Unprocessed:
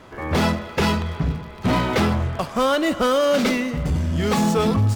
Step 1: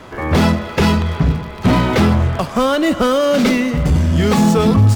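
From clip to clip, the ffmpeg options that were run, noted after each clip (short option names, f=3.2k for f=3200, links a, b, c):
-filter_complex "[0:a]acrossover=split=330[a][b];[b]acompressor=threshold=-31dB:ratio=1.5[c];[a][c]amix=inputs=2:normalize=0,volume=8dB"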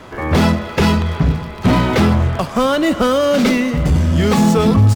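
-af "aecho=1:1:988:0.0631"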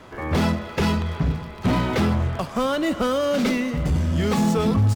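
-af "asoftclip=type=hard:threshold=-5dB,volume=-7.5dB"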